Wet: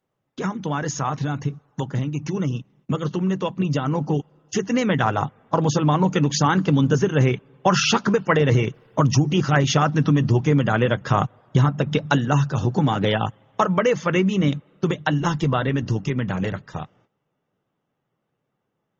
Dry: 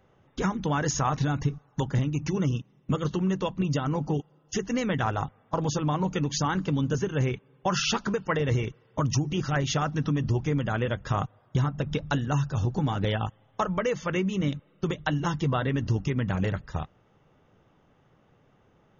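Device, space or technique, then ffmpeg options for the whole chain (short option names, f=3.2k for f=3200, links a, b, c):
video call: -filter_complex "[0:a]asplit=3[a][b][c];[a]afade=t=out:st=11.72:d=0.02[d];[b]highpass=f=96:p=1,afade=t=in:st=11.72:d=0.02,afade=t=out:st=13.24:d=0.02[e];[c]afade=t=in:st=13.24:d=0.02[f];[d][e][f]amix=inputs=3:normalize=0,highpass=f=110:w=0.5412,highpass=f=110:w=1.3066,dynaudnorm=f=410:g=21:m=8dB,agate=range=-15dB:threshold=-57dB:ratio=16:detection=peak,volume=1.5dB" -ar 48000 -c:a libopus -b:a 24k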